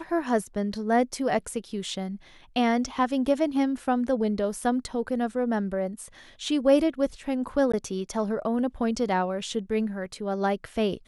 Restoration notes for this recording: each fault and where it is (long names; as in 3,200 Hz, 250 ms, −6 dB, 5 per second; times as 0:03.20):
0:07.72–0:07.74: drop-out 15 ms